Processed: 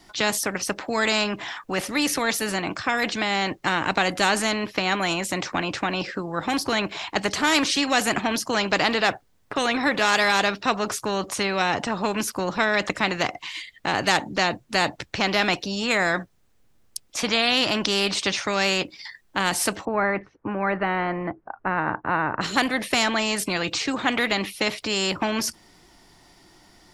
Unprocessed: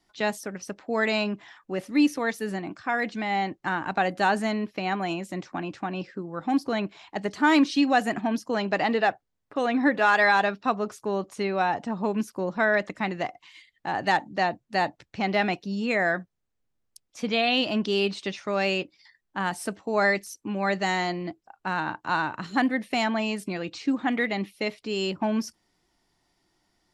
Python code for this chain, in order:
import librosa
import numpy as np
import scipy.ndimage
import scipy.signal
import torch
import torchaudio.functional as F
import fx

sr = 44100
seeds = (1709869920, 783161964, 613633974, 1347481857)

y = fx.lowpass(x, sr, hz=1600.0, slope=24, at=(19.85, 22.41))
y = fx.spectral_comp(y, sr, ratio=2.0)
y = F.gain(torch.from_numpy(y), 6.0).numpy()